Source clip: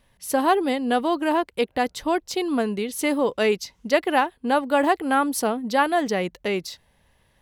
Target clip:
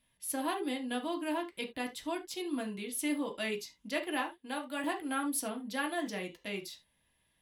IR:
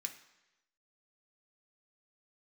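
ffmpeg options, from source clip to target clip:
-filter_complex "[0:a]asettb=1/sr,asplit=3[link_01][link_02][link_03];[link_01]atrim=end=4.364[link_04];[link_02]atrim=start=4.36:end=4.84,asetpts=PTS-STARTPTS,afade=type=in:duration=0.004:curve=qsin,afade=type=out:start_time=0.476:duration=0.004:curve=qsin,lowshelf=frequency=220:gain=-12[link_05];[link_03]atrim=start=4.836[link_06];[link_04][link_05]acrossfade=duration=0.004:curve1=hsin:curve2=qsin[link_07];[link_07][link_06]acrossfade=duration=0.004:curve1=qsin:curve2=hsin[link_08];[1:a]atrim=start_sample=2205,afade=type=out:start_time=0.17:duration=0.01,atrim=end_sample=7938,asetrate=61740,aresample=44100[link_09];[link_08][link_09]afir=irnorm=-1:irlink=0,volume=-4.5dB"

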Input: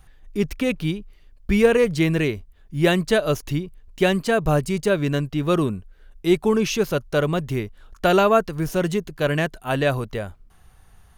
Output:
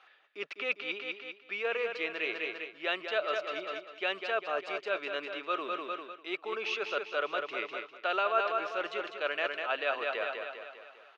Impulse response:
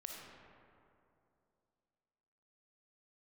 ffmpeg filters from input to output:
-af "highshelf=frequency=2400:gain=10,aecho=1:1:200|400|600|800|1000|1200:0.355|0.177|0.0887|0.0444|0.0222|0.0111,areverse,acompressor=threshold=-26dB:ratio=5,areverse,highpass=frequency=410:width=0.5412,highpass=frequency=410:width=1.3066,equalizer=frequency=650:width_type=q:width=4:gain=4,equalizer=frequency=1300:width_type=q:width=4:gain=10,equalizer=frequency=2500:width_type=q:width=4:gain=7,lowpass=frequency=3800:width=0.5412,lowpass=frequency=3800:width=1.3066,volume=-5dB"

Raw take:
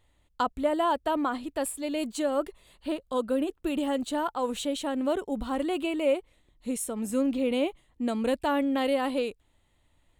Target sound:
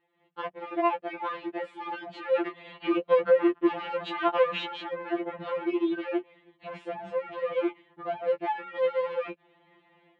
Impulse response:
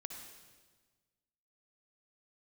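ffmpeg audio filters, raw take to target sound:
-filter_complex "[0:a]dynaudnorm=framelen=160:gausssize=3:maxgain=15dB,alimiter=limit=-13.5dB:level=0:latency=1:release=80,volume=25dB,asoftclip=hard,volume=-25dB,asplit=3[link_01][link_02][link_03];[link_01]afade=type=out:start_time=2.32:duration=0.02[link_04];[link_02]acontrast=35,afade=type=in:start_time=2.32:duration=0.02,afade=type=out:start_time=4.65:duration=0.02[link_05];[link_03]afade=type=in:start_time=4.65:duration=0.02[link_06];[link_04][link_05][link_06]amix=inputs=3:normalize=0,highpass=frequency=110:width=0.5412,highpass=frequency=110:width=1.3066,equalizer=frequency=120:width_type=q:width=4:gain=-6,equalizer=frequency=170:width_type=q:width=4:gain=-6,equalizer=frequency=400:width_type=q:width=4:gain=5,equalizer=frequency=1400:width_type=q:width=4:gain=-3,lowpass=frequency=2700:width=0.5412,lowpass=frequency=2700:width=1.3066,afftfilt=real='re*2.83*eq(mod(b,8),0)':imag='im*2.83*eq(mod(b,8),0)':win_size=2048:overlap=0.75"

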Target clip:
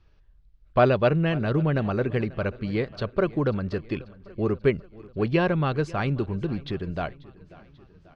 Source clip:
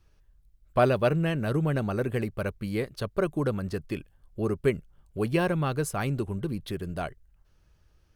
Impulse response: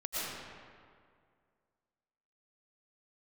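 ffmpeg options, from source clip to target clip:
-filter_complex "[0:a]lowpass=frequency=4700:width=0.5412,lowpass=frequency=4700:width=1.3066,asplit=2[link_01][link_02];[link_02]aecho=0:1:539|1078|1617|2156:0.0891|0.0499|0.0279|0.0157[link_03];[link_01][link_03]amix=inputs=2:normalize=0,volume=3dB"

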